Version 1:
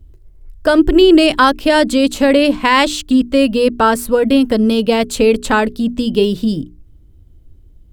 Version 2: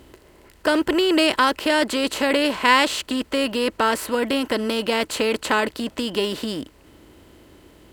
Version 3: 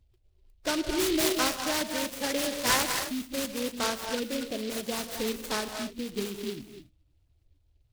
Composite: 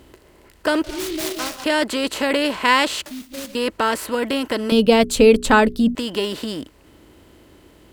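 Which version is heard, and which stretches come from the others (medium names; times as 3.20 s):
2
0.84–1.64 s: from 3
3.06–3.55 s: from 3
4.72–5.95 s: from 1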